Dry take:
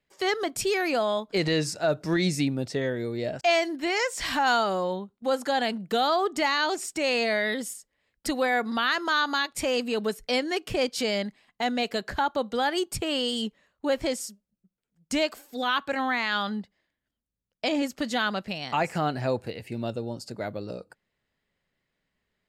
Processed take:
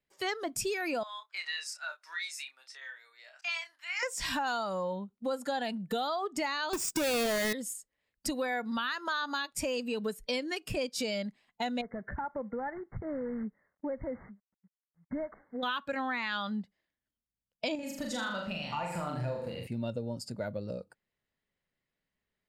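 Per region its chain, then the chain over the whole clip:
1.03–4.03 s: high-pass 1.2 kHz 24 dB/octave + treble shelf 2.6 kHz -8.5 dB + doubling 30 ms -8 dB
6.73–7.53 s: square wave that keeps the level + waveshaping leveller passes 1
11.81–15.63 s: CVSD coder 32 kbps + brick-wall FIR low-pass 2.2 kHz + compression 3:1, threshold -32 dBFS
17.75–19.67 s: hum notches 50/100/150/200/250/300/350/400/450/500 Hz + compression 2:1, threshold -34 dBFS + flutter echo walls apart 6.9 m, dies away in 0.73 s
whole clip: spectral noise reduction 8 dB; compression 4:1, threshold -31 dBFS

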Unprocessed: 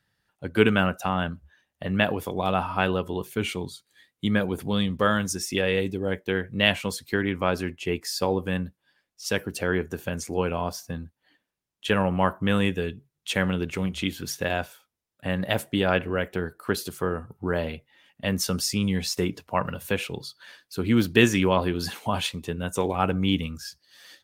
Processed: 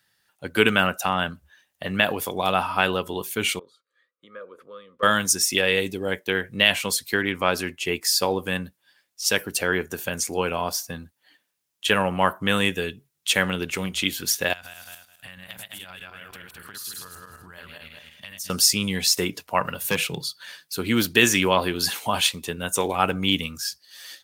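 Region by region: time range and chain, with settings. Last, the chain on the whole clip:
3.59–5.03 s: compression 2:1, threshold -33 dBFS + two resonant band-passes 790 Hz, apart 1.2 oct
14.53–18.50 s: backward echo that repeats 105 ms, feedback 42%, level -0.5 dB + peaking EQ 420 Hz -15 dB 2.2 oct + compression 8:1, threshold -41 dBFS
19.84–20.76 s: peaking EQ 160 Hz +14.5 dB 0.34 oct + hard clipper -17 dBFS
whole clip: tilt EQ +2.5 dB/octave; loudness maximiser +5.5 dB; trim -2 dB

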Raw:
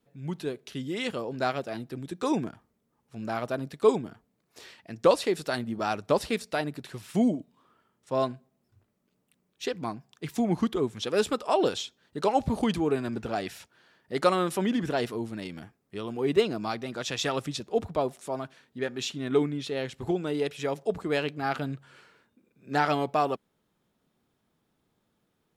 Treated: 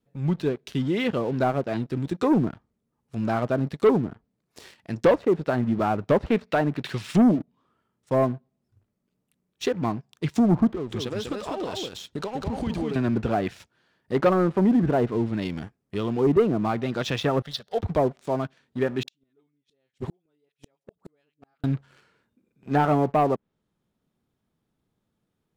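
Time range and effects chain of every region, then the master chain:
6.26–7.39 s: high-pass 77 Hz + peaking EQ 2.7 kHz +8.5 dB 2.6 oct
10.71–12.96 s: compression 12:1, threshold -34 dBFS + delay 197 ms -3.5 dB
17.42–17.83 s: RIAA curve recording + static phaser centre 1.6 kHz, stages 8
19.03–21.64 s: bass shelf 130 Hz -11.5 dB + phase dispersion highs, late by 50 ms, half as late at 660 Hz + inverted gate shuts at -29 dBFS, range -37 dB
whole clip: low-pass that closes with the level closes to 1.2 kHz, closed at -24.5 dBFS; bass shelf 240 Hz +8 dB; waveshaping leveller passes 2; trim -2.5 dB

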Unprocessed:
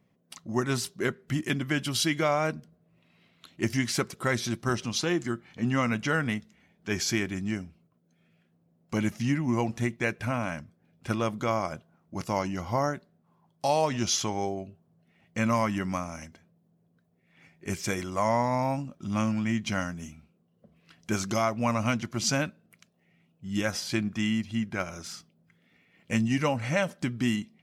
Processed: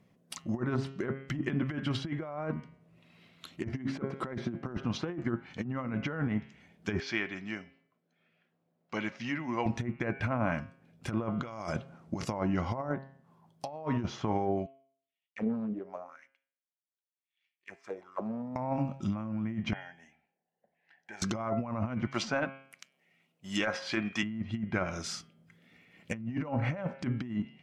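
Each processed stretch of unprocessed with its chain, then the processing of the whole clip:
3.73–4.77 s: high-pass 190 Hz + bass shelf 400 Hz +7.5 dB
7.00–9.66 s: high-pass 920 Hz 6 dB/octave + distance through air 220 m
11.29–12.25 s: low-pass 10 kHz + compressor with a negative ratio -40 dBFS
14.66–18.56 s: power-law waveshaper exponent 1.4 + auto-wah 210–3300 Hz, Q 4.3, down, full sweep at -26 dBFS + loudspeaker Doppler distortion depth 0.55 ms
19.73–21.22 s: two resonant band-passes 1.2 kHz, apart 1.1 oct + compression 3:1, threshold -45 dBFS
22.07–24.23 s: high-pass 750 Hz 6 dB/octave + waveshaping leveller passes 1
whole clip: de-hum 135.3 Hz, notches 24; low-pass that closes with the level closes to 1.3 kHz, closed at -25 dBFS; compressor with a negative ratio -31 dBFS, ratio -0.5

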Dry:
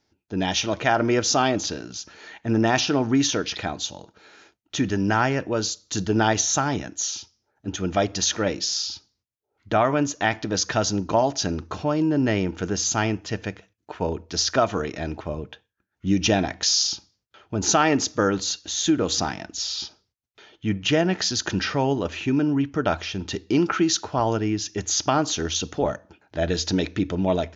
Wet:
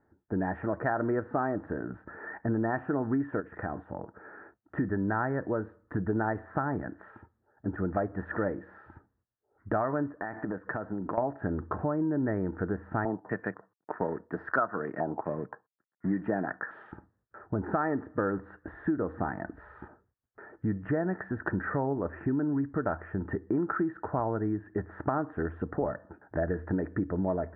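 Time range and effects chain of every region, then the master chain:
3.40–4.76 s: high-pass 42 Hz + compression 2.5:1, threshold -33 dBFS
10.17–11.18 s: high-pass 140 Hz + compression 10:1, threshold -30 dBFS
13.05–16.92 s: companding laws mixed up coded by A + high-pass 130 Hz 24 dB/octave + step-sequenced low-pass 4.1 Hz 850–5600 Hz
whole clip: Chebyshev low-pass 1.8 kHz, order 6; compression 3:1, threshold -34 dBFS; trim +4 dB

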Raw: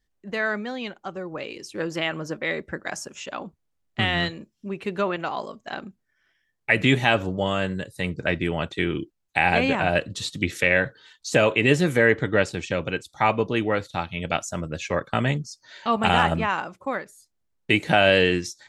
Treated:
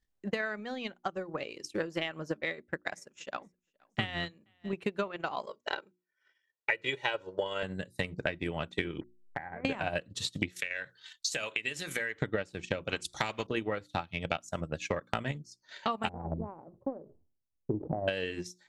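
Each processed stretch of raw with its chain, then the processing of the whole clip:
2.41–4.73 s: feedback delay 471 ms, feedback 28%, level -23.5 dB + upward expansion, over -38 dBFS
5.46–7.63 s: band-pass 140–5600 Hz + tone controls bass -8 dB, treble +2 dB + comb 2.1 ms, depth 77%
9.01–9.65 s: send-on-delta sampling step -30.5 dBFS + steep low-pass 2.1 kHz 96 dB/octave + compression 8:1, threshold -34 dBFS
10.56–12.22 s: tilt shelf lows -8.5 dB, about 1.1 kHz + compression 2.5:1, threshold -29 dBFS
12.89–13.47 s: careless resampling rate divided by 2×, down none, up filtered + spectrum-flattening compressor 2:1
16.09–18.08 s: Gaussian low-pass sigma 14 samples + peaking EQ 190 Hz -9 dB 0.21 oct + decay stretcher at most 77 dB/s
whole clip: hum notches 60/120/180/240/300/360 Hz; transient shaper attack +10 dB, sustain -8 dB; compression 5:1, threshold -23 dBFS; trim -6 dB

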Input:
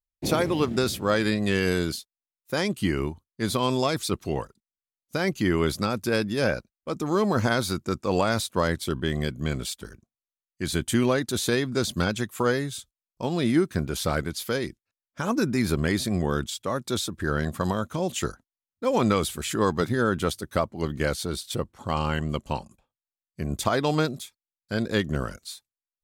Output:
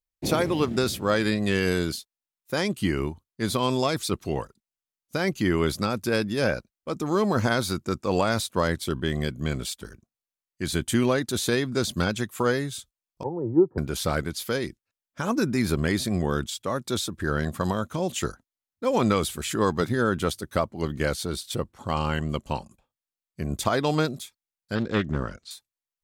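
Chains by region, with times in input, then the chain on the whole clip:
13.23–13.78 s: Chebyshev band-pass 100–970 Hz, order 4 + comb 2.3 ms, depth 74% + three bands expanded up and down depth 100%
24.75–25.51 s: distance through air 100 m + loudspeaker Doppler distortion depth 0.28 ms
whole clip: none

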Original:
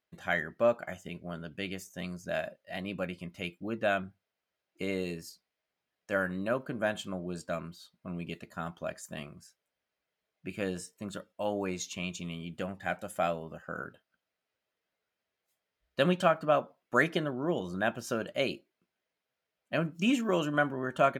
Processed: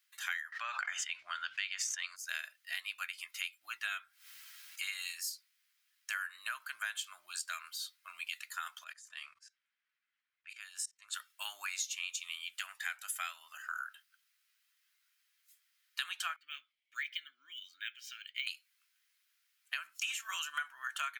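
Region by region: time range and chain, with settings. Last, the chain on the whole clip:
0.52–2.16 s: distance through air 140 m + level flattener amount 70%
3.81–5.19 s: comb of notches 300 Hz + upward compressor, threshold -43 dBFS
8.84–11.14 s: level-controlled noise filter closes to 2.2 kHz, open at -32 dBFS + bass shelf 180 Hz +10.5 dB + level held to a coarse grid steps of 23 dB
16.36–18.47 s: vowel filter i + treble shelf 2.5 kHz +7 dB + decimation joined by straight lines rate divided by 2×
whole clip: inverse Chebyshev high-pass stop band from 520 Hz, stop band 50 dB; treble shelf 4.3 kHz +10 dB; compression 5:1, threshold -43 dBFS; trim +7 dB

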